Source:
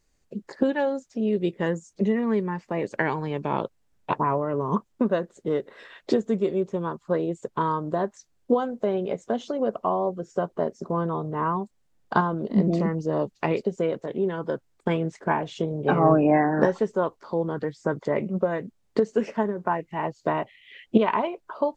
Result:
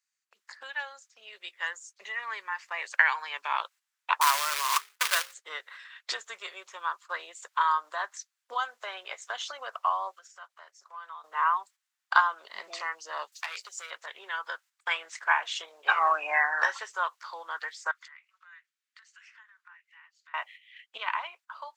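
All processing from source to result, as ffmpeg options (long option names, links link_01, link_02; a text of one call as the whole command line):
ffmpeg -i in.wav -filter_complex "[0:a]asettb=1/sr,asplit=3[link_01][link_02][link_03];[link_01]atrim=end=4.214[link_04];[link_02]atrim=start=4.21:end=5.34,asetpts=PTS-STARTPTS,afade=type=in:duration=0.004:curve=qsin,afade=type=out:start_time=1.126:duration=0.004:curve=qsin,equalizer=frequency=1400:width_type=o:width=0.48:gain=2,bandreject=frequency=60:width_type=h:width=6,bandreject=frequency=120:width_type=h:width=6,bandreject=frequency=180:width_type=h:width=6,bandreject=frequency=240:width_type=h:width=6,bandreject=frequency=300:width_type=h:width=6,bandreject=frequency=360:width_type=h:width=6,bandreject=frequency=420:width_type=h:width=6,bandreject=frequency=480:width_type=h:width=6,bandreject=frequency=540:width_type=h:width=6,acrusher=bits=2:mode=log:mix=0:aa=0.000001[link_05];[link_03]atrim=start=5.336[link_06];[link_04][link_05]acrossfade=duration=0.004:curve1=hsin:curve2=qsin[link_07];[link_07][link_06]acrossfade=duration=0.004:curve1=qsin:curve2=hsin,asettb=1/sr,asplit=3[link_08][link_09][link_10];[link_08]atrim=end=10.114[link_11];[link_09]atrim=start=10.11:end=11.24,asetpts=PTS-STARTPTS,afade=type=in:duration=0.004:curve=qsin,afade=type=out:start_time=1.126:duration=0.004:curve=qsin,highpass=frequency=870:poles=1,acompressor=threshold=-40dB:ratio=4:attack=3.2:release=140:knee=1:detection=peak[link_12];[link_10]atrim=start=11.236[link_13];[link_11][link_12]acrossfade=duration=0.004:curve1=hsin:curve2=qsin[link_14];[link_14][link_13]acrossfade=duration=0.004:curve1=qsin:curve2=hsin,asettb=1/sr,asplit=3[link_15][link_16][link_17];[link_15]atrim=end=13.324[link_18];[link_16]atrim=start=13.32:end=13.91,asetpts=PTS-STARTPTS,afade=type=in:duration=0.004:curve=qsin,afade=type=out:start_time=0.586:duration=0.004:curve=qsin,bass=frequency=250:gain=-5,treble=frequency=4000:gain=14,volume=20dB,asoftclip=hard,volume=-20dB,acompressor=threshold=-48dB:ratio=1.5:attack=3.2:release=140:knee=1:detection=peak[link_19];[link_17]atrim=start=13.906[link_20];[link_18][link_19]acrossfade=duration=0.004:curve1=hsin:curve2=qsin[link_21];[link_21][link_20]acrossfade=duration=0.004:curve1=qsin:curve2=hsin,asettb=1/sr,asplit=3[link_22][link_23][link_24];[link_22]atrim=end=17.914[link_25];[link_23]atrim=start=17.91:end=20.34,asetpts=PTS-STARTPTS,afade=type=in:duration=0.004:curve=qsin,afade=type=out:start_time=2.426:duration=0.004:curve=qsin,highpass=frequency=1400:width=0.5412,highpass=frequency=1400:width=1.3066,highshelf=frequency=4200:gain=-8.5,acompressor=threshold=-54dB:ratio=2:attack=3.2:release=140:knee=1:detection=peak[link_26];[link_24]atrim=start=20.336[link_27];[link_25][link_26]acrossfade=duration=0.004:curve1=hsin:curve2=qsin[link_28];[link_28][link_27]acrossfade=duration=0.004:curve1=qsin:curve2=hsin,agate=range=-9dB:threshold=-44dB:ratio=16:detection=peak,highpass=frequency=1200:width=0.5412,highpass=frequency=1200:width=1.3066,dynaudnorm=framelen=300:gausssize=13:maxgain=8dB" out.wav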